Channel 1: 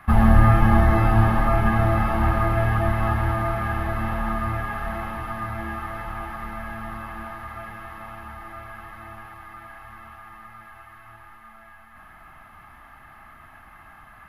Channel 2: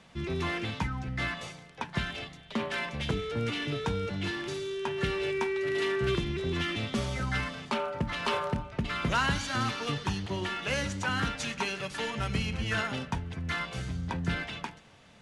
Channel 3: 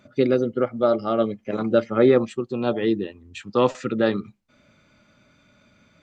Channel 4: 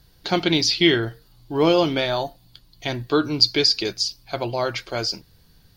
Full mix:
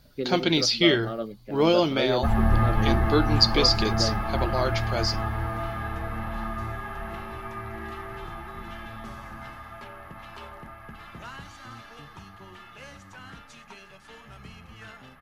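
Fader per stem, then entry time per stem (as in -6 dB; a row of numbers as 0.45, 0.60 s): -6.5, -15.0, -11.0, -3.0 dB; 2.15, 2.10, 0.00, 0.00 s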